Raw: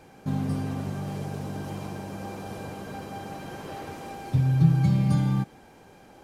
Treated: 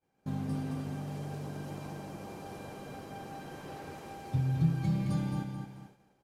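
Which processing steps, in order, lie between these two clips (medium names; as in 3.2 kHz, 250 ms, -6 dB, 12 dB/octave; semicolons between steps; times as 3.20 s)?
feedback delay 218 ms, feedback 35%, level -6 dB; expander -39 dBFS; trim -7.5 dB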